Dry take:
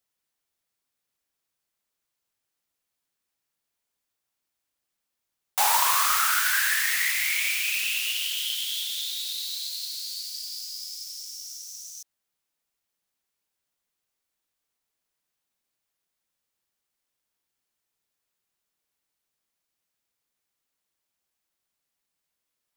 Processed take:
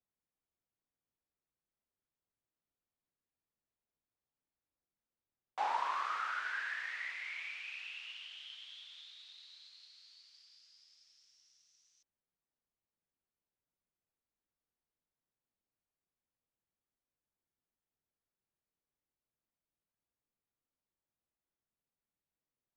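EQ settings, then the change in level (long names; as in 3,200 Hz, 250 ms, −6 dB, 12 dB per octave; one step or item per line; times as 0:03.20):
head-to-tape spacing loss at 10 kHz 40 dB
low-shelf EQ 450 Hz +5.5 dB
−7.0 dB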